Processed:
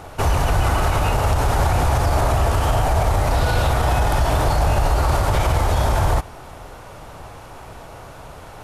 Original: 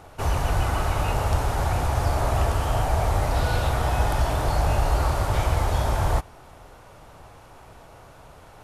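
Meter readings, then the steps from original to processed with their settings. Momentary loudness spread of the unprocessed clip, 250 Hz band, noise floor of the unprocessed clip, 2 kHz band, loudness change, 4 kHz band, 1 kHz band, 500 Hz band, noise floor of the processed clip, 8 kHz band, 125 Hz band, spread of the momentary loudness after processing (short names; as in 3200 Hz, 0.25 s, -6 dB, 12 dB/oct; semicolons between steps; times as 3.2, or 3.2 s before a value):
2 LU, +5.5 dB, -48 dBFS, +5.5 dB, +5.0 dB, +5.5 dB, +5.5 dB, +5.5 dB, -39 dBFS, +5.5 dB, +4.5 dB, 20 LU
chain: limiter -18.5 dBFS, peak gain reduction 9.5 dB; gain +9 dB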